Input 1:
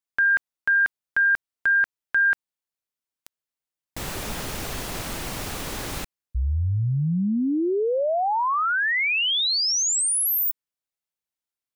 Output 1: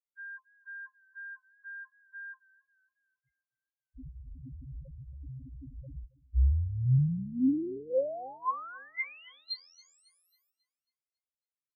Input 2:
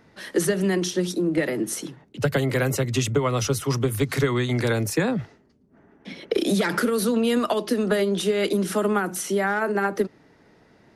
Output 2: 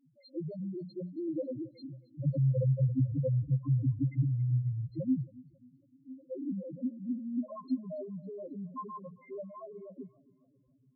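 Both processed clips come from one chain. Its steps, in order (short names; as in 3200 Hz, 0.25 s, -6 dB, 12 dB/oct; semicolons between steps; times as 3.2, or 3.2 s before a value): octave resonator C, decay 0.1 s; loudest bins only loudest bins 1; warbling echo 0.273 s, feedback 42%, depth 54 cents, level -22 dB; gain +5 dB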